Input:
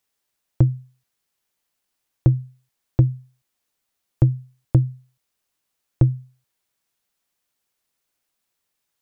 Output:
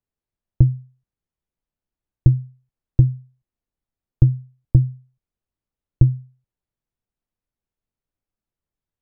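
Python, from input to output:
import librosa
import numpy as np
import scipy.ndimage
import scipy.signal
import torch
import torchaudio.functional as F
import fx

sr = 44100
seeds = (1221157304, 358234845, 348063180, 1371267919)

y = fx.tilt_eq(x, sr, slope=-4.5)
y = y * 10.0 ** (-11.5 / 20.0)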